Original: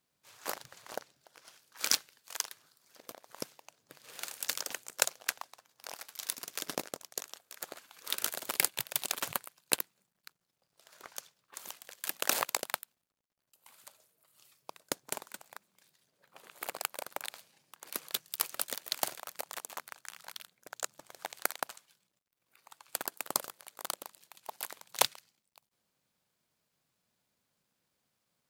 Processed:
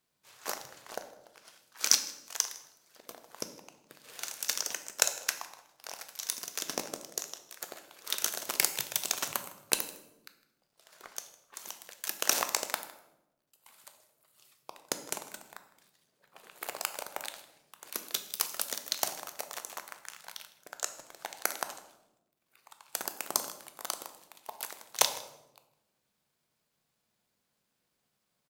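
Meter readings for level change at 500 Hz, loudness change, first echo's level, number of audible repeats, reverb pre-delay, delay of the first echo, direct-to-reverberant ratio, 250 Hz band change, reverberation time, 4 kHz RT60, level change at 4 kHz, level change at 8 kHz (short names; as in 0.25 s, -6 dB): +1.0 dB, +2.5 dB, -20.5 dB, 1, 3 ms, 0.157 s, 8.0 dB, +0.5 dB, 0.95 s, 0.60 s, +2.5 dB, +4.0 dB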